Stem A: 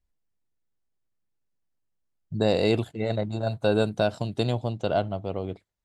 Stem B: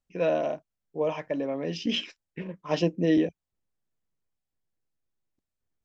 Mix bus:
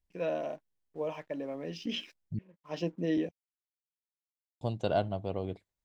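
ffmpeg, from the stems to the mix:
ffmpeg -i stem1.wav -i stem2.wav -filter_complex "[0:a]bandreject=frequency=1300:width=9.4,volume=-4dB,asplit=3[link_01][link_02][link_03];[link_01]atrim=end=2.39,asetpts=PTS-STARTPTS,afade=type=out:start_time=2.386:duration=0.004:curve=hsin[link_04];[link_02]atrim=start=2.39:end=4.61,asetpts=PTS-STARTPTS,volume=0[link_05];[link_03]atrim=start=4.61,asetpts=PTS-STARTPTS,afade=type=in:duration=0.004:curve=hsin[link_06];[link_04][link_05][link_06]concat=n=3:v=0:a=1,asplit=2[link_07][link_08];[1:a]aeval=exprs='sgn(val(0))*max(abs(val(0))-0.00119,0)':channel_layout=same,volume=-7.5dB[link_09];[link_08]apad=whole_len=257694[link_10];[link_09][link_10]sidechaincompress=threshold=-49dB:ratio=8:attack=26:release=390[link_11];[link_07][link_11]amix=inputs=2:normalize=0" out.wav

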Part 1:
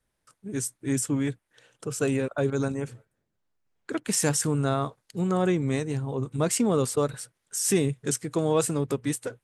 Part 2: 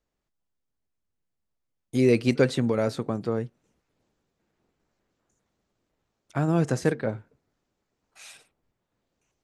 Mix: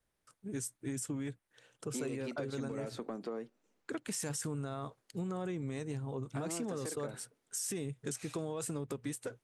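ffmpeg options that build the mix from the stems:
ffmpeg -i stem1.wav -i stem2.wav -filter_complex "[0:a]alimiter=limit=-18.5dB:level=0:latency=1:release=15,volume=-5.5dB[link_01];[1:a]highpass=frequency=220:width=0.5412,highpass=frequency=220:width=1.3066,acompressor=threshold=-26dB:ratio=6,asoftclip=type=tanh:threshold=-22dB,volume=-5.5dB[link_02];[link_01][link_02]amix=inputs=2:normalize=0,acompressor=threshold=-35dB:ratio=6" out.wav

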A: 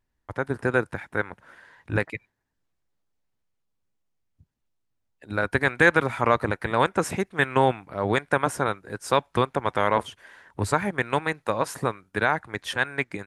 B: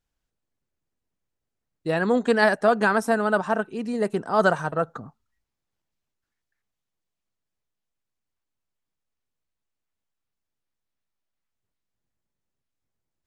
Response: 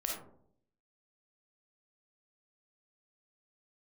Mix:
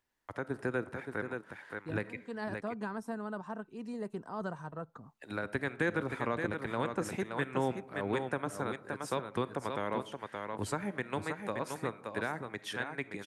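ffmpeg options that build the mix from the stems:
-filter_complex "[0:a]highpass=frequency=510:poles=1,volume=0dB,asplit=4[link_01][link_02][link_03][link_04];[link_02]volume=-16dB[link_05];[link_03]volume=-6dB[link_06];[1:a]equalizer=frequency=1000:width_type=o:width=0.34:gain=8,volume=-12dB[link_07];[link_04]apad=whole_len=584802[link_08];[link_07][link_08]sidechaincompress=threshold=-42dB:ratio=8:attack=16:release=268[link_09];[2:a]atrim=start_sample=2205[link_10];[link_05][link_10]afir=irnorm=-1:irlink=0[link_11];[link_06]aecho=0:1:573:1[link_12];[link_01][link_09][link_11][link_12]amix=inputs=4:normalize=0,acrossover=split=330[link_13][link_14];[link_14]acompressor=threshold=-47dB:ratio=2[link_15];[link_13][link_15]amix=inputs=2:normalize=0"

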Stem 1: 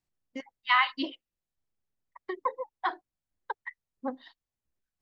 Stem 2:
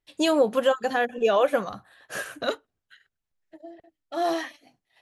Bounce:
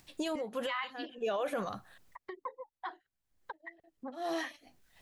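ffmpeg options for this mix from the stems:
ffmpeg -i stem1.wav -i stem2.wav -filter_complex "[0:a]acompressor=mode=upward:threshold=-27dB:ratio=2.5,volume=-11.5dB,asplit=2[link_01][link_02];[1:a]volume=-3.5dB,asplit=3[link_03][link_04][link_05];[link_03]atrim=end=1.98,asetpts=PTS-STARTPTS,afade=type=out:start_time=1.976:duration=0.004:curve=hsin[link_06];[link_04]atrim=start=1.98:end=2.86,asetpts=PTS-STARTPTS,volume=0[link_07];[link_05]atrim=start=2.86,asetpts=PTS-STARTPTS,afade=type=in:duration=0.004:curve=hsin[link_08];[link_06][link_07][link_08]concat=n=3:v=0:a=1[link_09];[link_02]apad=whole_len=221282[link_10];[link_09][link_10]sidechaincompress=threshold=-57dB:ratio=8:attack=10:release=244[link_11];[link_01][link_11]amix=inputs=2:normalize=0,alimiter=level_in=2dB:limit=-24dB:level=0:latency=1:release=20,volume=-2dB" out.wav

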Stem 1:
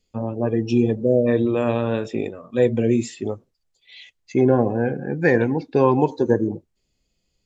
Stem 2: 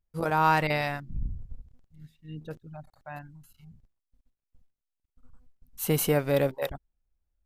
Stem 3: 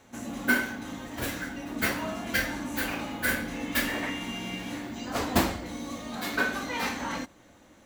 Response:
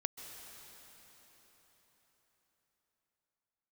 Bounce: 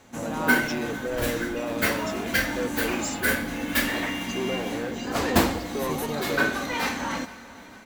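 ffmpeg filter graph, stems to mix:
-filter_complex "[0:a]bass=frequency=250:gain=-15,treble=frequency=4000:gain=14,asoftclip=type=tanh:threshold=-20.5dB,volume=-5.5dB[link_01];[1:a]volume=-9dB[link_02];[2:a]volume=0.5dB,asplit=3[link_03][link_04][link_05];[link_04]volume=-7dB[link_06];[link_05]volume=-19.5dB[link_07];[3:a]atrim=start_sample=2205[link_08];[link_06][link_08]afir=irnorm=-1:irlink=0[link_09];[link_07]aecho=0:1:452|904|1356|1808|2260|2712|3164|3616|4068:1|0.59|0.348|0.205|0.121|0.0715|0.0422|0.0249|0.0147[link_10];[link_01][link_02][link_03][link_09][link_10]amix=inputs=5:normalize=0"

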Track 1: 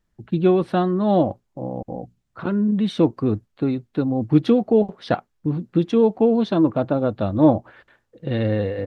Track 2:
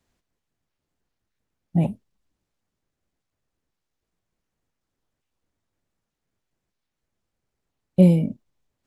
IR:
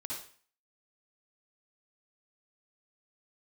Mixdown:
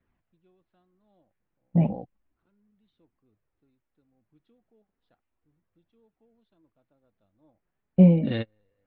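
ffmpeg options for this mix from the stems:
-filter_complex "[0:a]lowpass=frequency=4000:width=0.5412,lowpass=frequency=4000:width=1.3066,highshelf=frequency=2400:gain=10.5,volume=-6.5dB[link_01];[1:a]lowpass=frequency=2500:width=0.5412,lowpass=frequency=2500:width=1.3066,flanger=delay=0.5:depth=5.4:regen=-34:speed=0.33:shape=triangular,volume=2dB,asplit=2[link_02][link_03];[link_03]apad=whole_len=390741[link_04];[link_01][link_04]sidechaingate=range=-43dB:threshold=-42dB:ratio=16:detection=peak[link_05];[link_05][link_02]amix=inputs=2:normalize=0"

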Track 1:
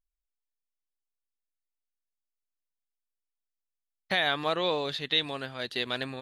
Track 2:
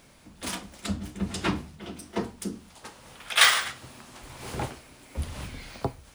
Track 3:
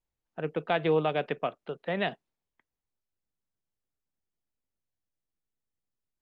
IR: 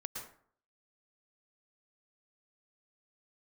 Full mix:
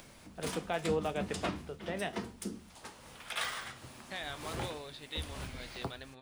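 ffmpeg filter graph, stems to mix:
-filter_complex "[0:a]volume=-10.5dB[link_01];[1:a]acrossover=split=310|1300[link_02][link_03][link_04];[link_02]acompressor=threshold=-34dB:ratio=4[link_05];[link_03]acompressor=threshold=-38dB:ratio=4[link_06];[link_04]acompressor=threshold=-35dB:ratio=4[link_07];[link_05][link_06][link_07]amix=inputs=3:normalize=0,volume=0dB[link_08];[2:a]volume=-3dB[link_09];[link_01][link_08][link_09]amix=inputs=3:normalize=0,acompressor=mode=upward:threshold=-44dB:ratio=2.5,flanger=delay=8.7:depth=3.8:regen=-74:speed=0.81:shape=sinusoidal"

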